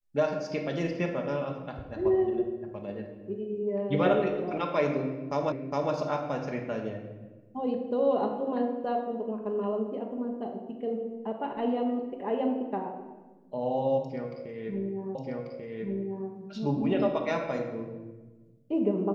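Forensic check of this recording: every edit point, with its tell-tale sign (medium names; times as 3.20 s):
5.52 s: repeat of the last 0.41 s
15.15 s: repeat of the last 1.14 s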